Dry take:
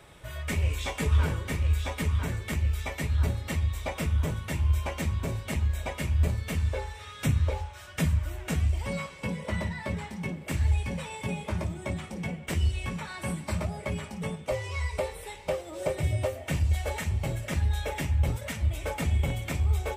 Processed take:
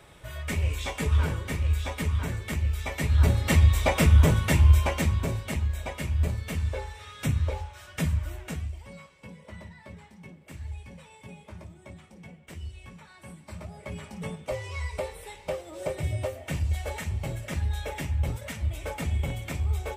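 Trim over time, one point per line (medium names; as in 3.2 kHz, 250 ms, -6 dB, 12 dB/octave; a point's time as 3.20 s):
2.78 s 0 dB
3.55 s +9.5 dB
4.50 s +9.5 dB
5.68 s -1 dB
8.35 s -1 dB
8.85 s -13 dB
13.38 s -13 dB
14.17 s -2 dB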